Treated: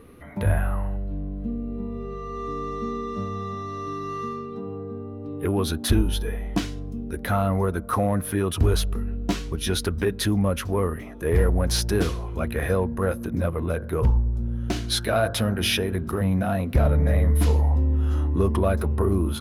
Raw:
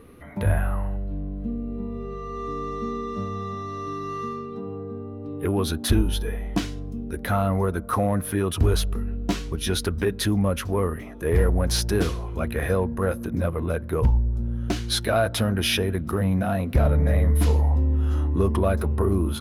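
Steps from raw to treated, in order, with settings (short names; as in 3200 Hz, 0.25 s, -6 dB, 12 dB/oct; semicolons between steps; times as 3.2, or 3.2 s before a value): 13.74–16.21 de-hum 48.79 Hz, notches 34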